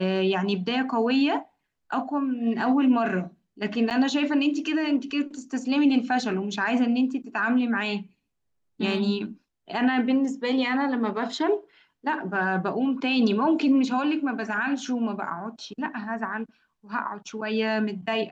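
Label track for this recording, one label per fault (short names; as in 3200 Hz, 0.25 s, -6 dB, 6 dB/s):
3.900000	3.910000	gap 8 ms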